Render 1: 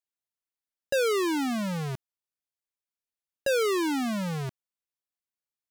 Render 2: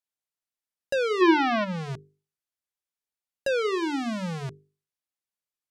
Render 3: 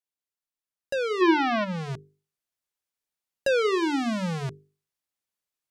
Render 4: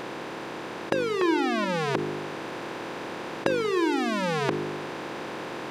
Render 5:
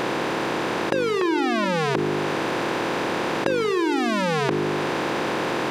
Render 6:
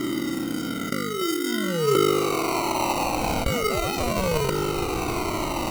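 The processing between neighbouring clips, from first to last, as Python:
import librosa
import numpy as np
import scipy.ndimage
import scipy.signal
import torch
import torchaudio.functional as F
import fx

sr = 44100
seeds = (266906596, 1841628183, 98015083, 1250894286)

y1 = fx.spec_box(x, sr, start_s=1.21, length_s=0.43, low_hz=320.0, high_hz=6000.0, gain_db=11)
y1 = fx.env_lowpass_down(y1, sr, base_hz=2800.0, full_db=-21.5)
y1 = fx.hum_notches(y1, sr, base_hz=50, count=9)
y2 = fx.rider(y1, sr, range_db=3, speed_s=2.0)
y3 = fx.bin_compress(y2, sr, power=0.2)
y3 = y3 * librosa.db_to_amplitude(-7.0)
y4 = fx.env_flatten(y3, sr, amount_pct=70)
y5 = fx.filter_sweep_lowpass(y4, sr, from_hz=290.0, to_hz=5100.0, start_s=1.53, end_s=4.62, q=2.4)
y5 = fx.sample_hold(y5, sr, seeds[0], rate_hz=1700.0, jitter_pct=0)
y5 = fx.comb_cascade(y5, sr, direction='falling', hz=0.37)
y5 = y5 * librosa.db_to_amplitude(2.5)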